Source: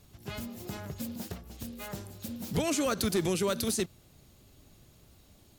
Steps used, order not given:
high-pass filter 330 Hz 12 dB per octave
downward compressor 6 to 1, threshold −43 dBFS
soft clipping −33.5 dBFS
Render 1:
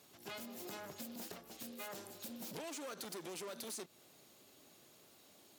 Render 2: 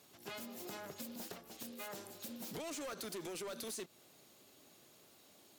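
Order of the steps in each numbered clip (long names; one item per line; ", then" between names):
soft clipping, then high-pass filter, then downward compressor
high-pass filter, then soft clipping, then downward compressor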